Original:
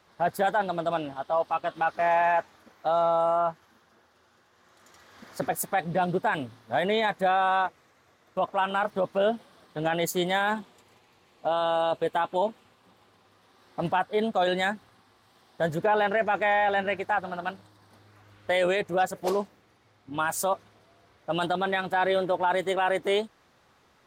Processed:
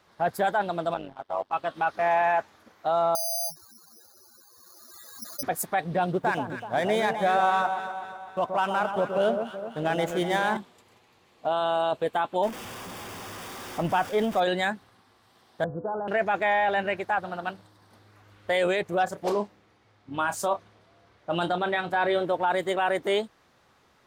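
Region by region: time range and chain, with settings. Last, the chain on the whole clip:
0.94–1.53 s: companding laws mixed up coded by A + low-pass 4 kHz 6 dB/octave + AM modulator 96 Hz, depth 75%
3.15–5.43 s: spectral contrast enhancement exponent 3.7 + compression 4:1, threshold -40 dBFS + careless resampling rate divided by 8×, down filtered, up zero stuff
6.11–10.57 s: median filter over 9 samples + echo whose repeats swap between lows and highs 126 ms, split 1.2 kHz, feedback 70%, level -6 dB
12.43–14.40 s: jump at every zero crossing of -34 dBFS + band-stop 4.1 kHz, Q 5.9
15.64–16.08 s: steep low-pass 1.4 kHz 72 dB/octave + bass shelf 360 Hz +6.5 dB + feedback comb 100 Hz, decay 0.67 s, mix 70%
19.04–22.25 s: treble shelf 10 kHz -11.5 dB + doubling 29 ms -10 dB
whole clip: none

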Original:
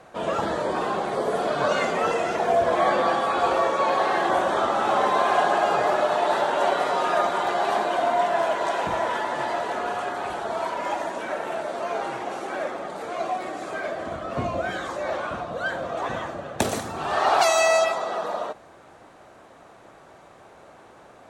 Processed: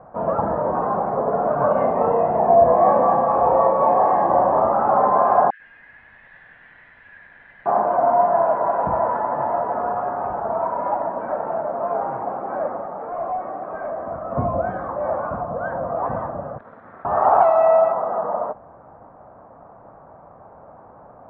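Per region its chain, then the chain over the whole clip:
1.72–4.73 s: peaking EQ 1.4 kHz -13 dB 0.24 oct + doubling 32 ms -3 dB
5.50–7.66 s: steep high-pass 1.7 kHz 96 dB/octave + bit-crushed delay 98 ms, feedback 80%, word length 8-bit, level -4.5 dB
12.81–14.31 s: bass shelf 210 Hz -8 dB + de-hum 53.35 Hz, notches 30 + overload inside the chain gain 27 dB
16.58–17.05 s: comb filter that takes the minimum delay 0.54 ms + high-pass 1.3 kHz 6 dB/octave + compression 8:1, threshold -37 dBFS
whole clip: low-pass 1.1 kHz 24 dB/octave; peaking EQ 360 Hz -10 dB 0.64 oct; trim +7 dB

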